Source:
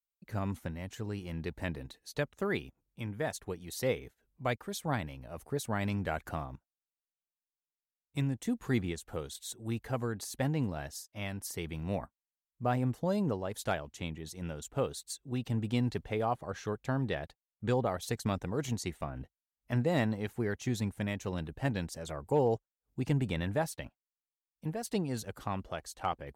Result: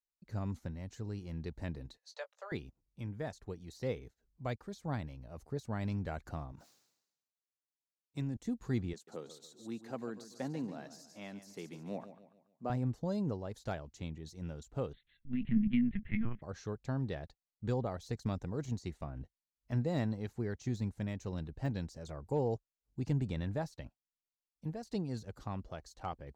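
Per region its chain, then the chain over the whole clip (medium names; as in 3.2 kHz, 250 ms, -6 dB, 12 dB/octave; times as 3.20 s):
1.97–2.52 s: steep high-pass 500 Hz 72 dB/octave + distance through air 53 m + doubling 18 ms -11 dB
6.52–8.37 s: high-pass 150 Hz + decay stretcher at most 60 dB/s
8.93–12.70 s: high-pass 190 Hz 24 dB/octave + feedback delay 142 ms, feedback 41%, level -12.5 dB
14.93–16.42 s: FFT filter 150 Hz 0 dB, 220 Hz +12 dB, 440 Hz -28 dB, 1.1 kHz -8 dB, 2 kHz +14 dB, 3.3 kHz +1 dB, 4.7 kHz -27 dB + LPC vocoder at 8 kHz pitch kept
whole clip: high-order bell 5.4 kHz +9 dB 1.1 oct; de-esser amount 90%; tilt EQ -2 dB/octave; trim -8 dB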